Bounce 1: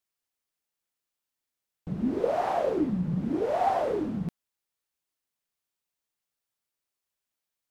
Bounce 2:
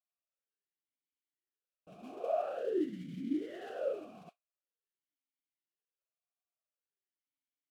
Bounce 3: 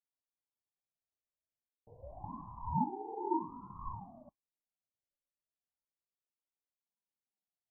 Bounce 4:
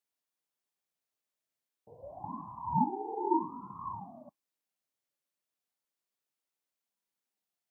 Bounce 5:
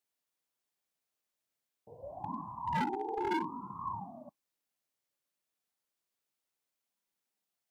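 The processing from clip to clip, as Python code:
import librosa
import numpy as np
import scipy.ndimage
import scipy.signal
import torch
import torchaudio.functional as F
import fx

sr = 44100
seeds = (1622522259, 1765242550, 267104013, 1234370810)

y1 = fx.mod_noise(x, sr, seeds[0], snr_db=15)
y1 = fx.vowel_sweep(y1, sr, vowels='a-i', hz=0.47)
y2 = scipy.signal.sosfilt(scipy.signal.cheby2(4, 70, 1900.0, 'lowpass', fs=sr, output='sos'), y1)
y2 = fx.ring_lfo(y2, sr, carrier_hz=450.0, swing_pct=40, hz=0.3)
y2 = y2 * 10.0 ** (4.0 / 20.0)
y3 = scipy.signal.sosfilt(scipy.signal.butter(2, 160.0, 'highpass', fs=sr, output='sos'), y2)
y3 = y3 * 10.0 ** (5.0 / 20.0)
y4 = np.clip(10.0 ** (30.0 / 20.0) * y3, -1.0, 1.0) / 10.0 ** (30.0 / 20.0)
y4 = y4 * 10.0 ** (1.5 / 20.0)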